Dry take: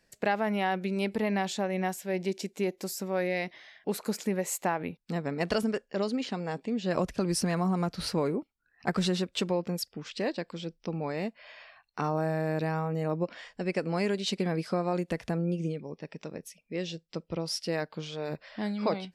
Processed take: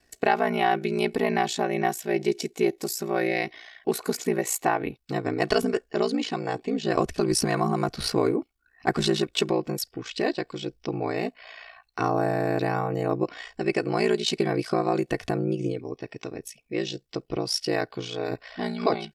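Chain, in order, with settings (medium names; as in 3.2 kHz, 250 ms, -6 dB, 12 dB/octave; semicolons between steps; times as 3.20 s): ring modulator 29 Hz; comb 2.7 ms, depth 55%; trim +7.5 dB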